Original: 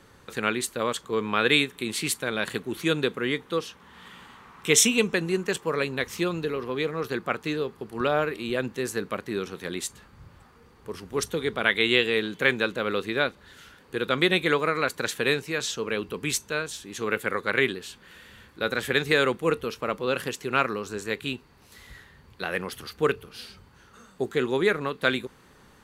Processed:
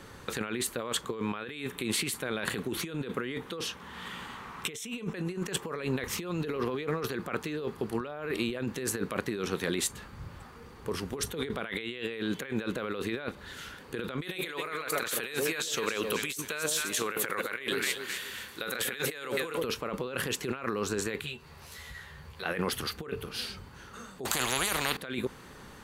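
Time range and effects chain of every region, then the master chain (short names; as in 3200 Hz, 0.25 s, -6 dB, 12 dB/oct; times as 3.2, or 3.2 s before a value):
14.22–19.64 tilt +3 dB/oct + echo with dull and thin repeats by turns 0.129 s, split 810 Hz, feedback 52%, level -8 dB
21.22–22.46 bell 280 Hz -13.5 dB 0.52 oct + compressor 2:1, threshold -52 dBFS + doubler 13 ms -3 dB
24.25–24.97 low shelf 280 Hz -11 dB + spectral compressor 10:1
whole clip: dynamic EQ 5600 Hz, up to -5 dB, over -39 dBFS, Q 0.76; negative-ratio compressor -34 dBFS, ratio -1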